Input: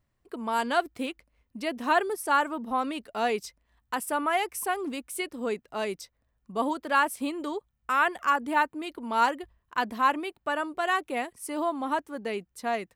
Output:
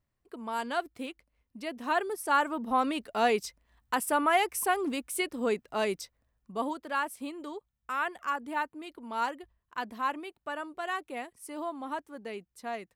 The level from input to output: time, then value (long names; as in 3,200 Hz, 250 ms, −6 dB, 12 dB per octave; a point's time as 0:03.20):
0:01.79 −6 dB
0:02.80 +1.5 dB
0:06.01 +1.5 dB
0:06.95 −7.5 dB